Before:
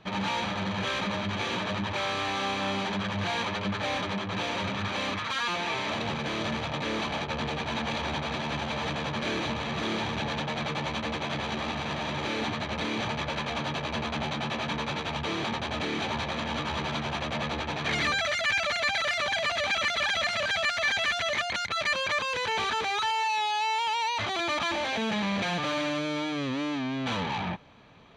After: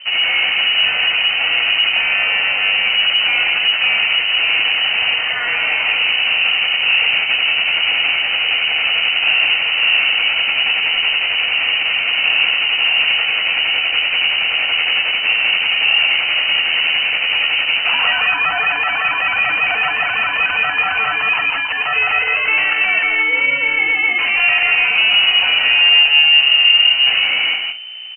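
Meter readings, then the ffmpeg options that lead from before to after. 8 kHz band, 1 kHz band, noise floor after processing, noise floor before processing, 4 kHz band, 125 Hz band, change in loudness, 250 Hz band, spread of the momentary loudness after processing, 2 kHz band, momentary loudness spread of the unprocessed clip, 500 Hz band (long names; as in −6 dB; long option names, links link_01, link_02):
below −40 dB, +5.0 dB, −20 dBFS, −34 dBFS, +19.5 dB, below −10 dB, +16.5 dB, can't be measured, 5 LU, +17.5 dB, 5 LU, −0.5 dB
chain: -filter_complex "[0:a]equalizer=frequency=360:width_type=o:width=2.3:gain=12.5,asplit=2[link_01][link_02];[link_02]acrusher=samples=12:mix=1:aa=0.000001,volume=-6dB[link_03];[link_01][link_03]amix=inputs=2:normalize=0,aeval=exprs='val(0)+0.0112*(sin(2*PI*60*n/s)+sin(2*PI*2*60*n/s)/2+sin(2*PI*3*60*n/s)/3+sin(2*PI*4*60*n/s)/4+sin(2*PI*5*60*n/s)/5)':channel_layout=same,asplit=2[link_04][link_05];[link_05]adelay=47,volume=-9.5dB[link_06];[link_04][link_06]amix=inputs=2:normalize=0,asplit=2[link_07][link_08];[link_08]aecho=0:1:166:0.596[link_09];[link_07][link_09]amix=inputs=2:normalize=0,lowpass=frequency=2600:width_type=q:width=0.5098,lowpass=frequency=2600:width_type=q:width=0.6013,lowpass=frequency=2600:width_type=q:width=0.9,lowpass=frequency=2600:width_type=q:width=2.563,afreqshift=-3100,volume=3.5dB"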